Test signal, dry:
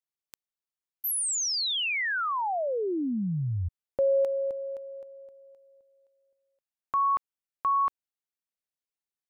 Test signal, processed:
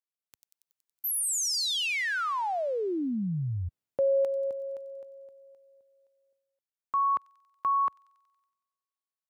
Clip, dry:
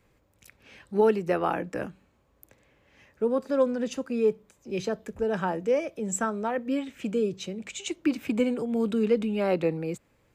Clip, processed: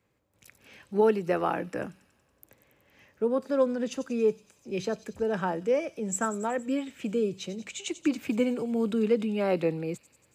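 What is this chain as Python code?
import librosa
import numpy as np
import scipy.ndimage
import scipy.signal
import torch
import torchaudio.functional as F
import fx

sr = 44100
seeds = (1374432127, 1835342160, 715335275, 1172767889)

y = scipy.signal.sosfilt(scipy.signal.butter(2, 76.0, 'highpass', fs=sr, output='sos'), x)
y = fx.echo_wet_highpass(y, sr, ms=93, feedback_pct=69, hz=4700.0, wet_db=-9.5)
y = fx.gate_hold(y, sr, open_db=-54.0, close_db=-63.0, hold_ms=282.0, range_db=-6, attack_ms=1.4, release_ms=100.0)
y = F.gain(torch.from_numpy(y), -1.0).numpy()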